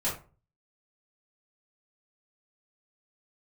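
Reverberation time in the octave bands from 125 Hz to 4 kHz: 0.60, 0.40, 0.35, 0.35, 0.30, 0.20 seconds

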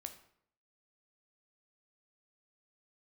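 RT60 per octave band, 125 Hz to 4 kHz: 0.70, 0.70, 0.70, 0.65, 0.60, 0.50 seconds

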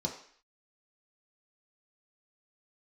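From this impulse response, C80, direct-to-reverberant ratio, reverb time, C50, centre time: 11.0 dB, −1.0 dB, 0.55 s, 8.0 dB, 23 ms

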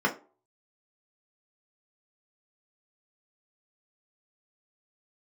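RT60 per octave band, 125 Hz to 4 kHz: 0.25, 0.40, 0.40, 0.35, 0.25, 0.20 seconds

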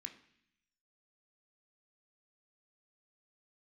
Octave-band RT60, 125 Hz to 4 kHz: 1.0, 0.95, 0.65, 0.70, 0.95, 1.0 seconds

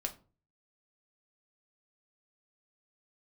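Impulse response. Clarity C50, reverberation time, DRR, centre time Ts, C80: 15.0 dB, 0.35 s, 3.0 dB, 8 ms, 21.5 dB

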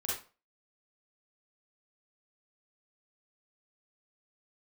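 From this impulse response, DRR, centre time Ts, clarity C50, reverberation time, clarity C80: −6.5 dB, 51 ms, 0.0 dB, 0.35 s, 8.0 dB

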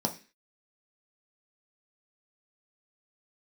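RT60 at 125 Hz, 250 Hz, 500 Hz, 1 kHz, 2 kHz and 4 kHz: 0.30, 0.40, 0.35, 0.30, 0.50, 0.40 seconds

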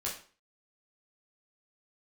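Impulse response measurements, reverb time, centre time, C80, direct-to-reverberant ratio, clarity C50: 0.40 s, 29 ms, 11.5 dB, −4.5 dB, 6.5 dB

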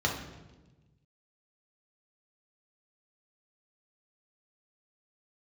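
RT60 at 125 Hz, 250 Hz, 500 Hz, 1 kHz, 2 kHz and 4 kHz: 1.9, 1.6, 1.3, 1.0, 0.95, 0.95 seconds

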